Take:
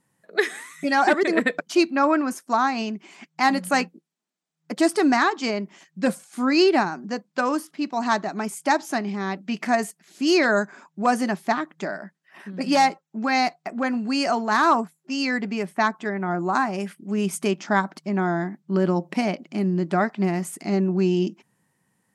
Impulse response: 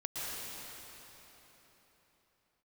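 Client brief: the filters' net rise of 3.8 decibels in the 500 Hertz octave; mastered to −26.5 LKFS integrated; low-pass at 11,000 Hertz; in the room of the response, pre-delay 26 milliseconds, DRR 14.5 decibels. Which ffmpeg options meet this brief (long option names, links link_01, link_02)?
-filter_complex "[0:a]lowpass=11000,equalizer=frequency=500:width_type=o:gain=5.5,asplit=2[link_01][link_02];[1:a]atrim=start_sample=2205,adelay=26[link_03];[link_02][link_03]afir=irnorm=-1:irlink=0,volume=-18.5dB[link_04];[link_01][link_04]amix=inputs=2:normalize=0,volume=-5dB"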